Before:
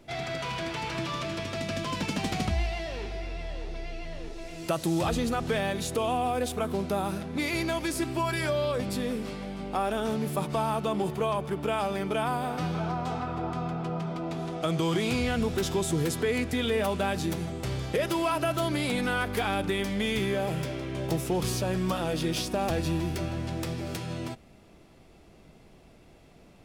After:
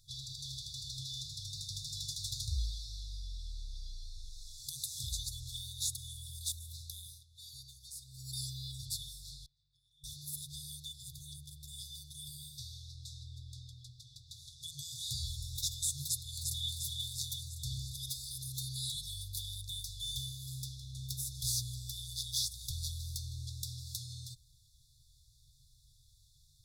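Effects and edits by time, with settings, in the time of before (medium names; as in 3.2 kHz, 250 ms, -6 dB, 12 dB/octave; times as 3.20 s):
6.85–8.43 s: dip -12 dB, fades 0.39 s
9.46–10.04 s: vowel filter u
16.06–16.73 s: echo throw 350 ms, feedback 60%, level -3.5 dB
whole clip: FFT band-reject 140–3400 Hz; amplifier tone stack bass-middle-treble 5-5-5; trim +7.5 dB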